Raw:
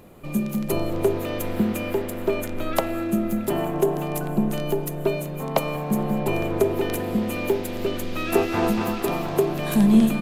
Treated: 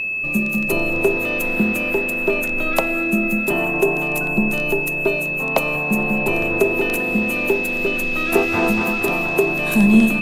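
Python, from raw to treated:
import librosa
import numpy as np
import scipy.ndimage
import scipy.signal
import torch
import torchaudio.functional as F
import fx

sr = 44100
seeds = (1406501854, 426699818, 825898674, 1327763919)

y = x + 10.0 ** (-24.0 / 20.0) * np.sin(2.0 * np.pi * 2600.0 * np.arange(len(x)) / sr)
y = fx.hum_notches(y, sr, base_hz=50, count=3)
y = F.gain(torch.from_numpy(y), 3.0).numpy()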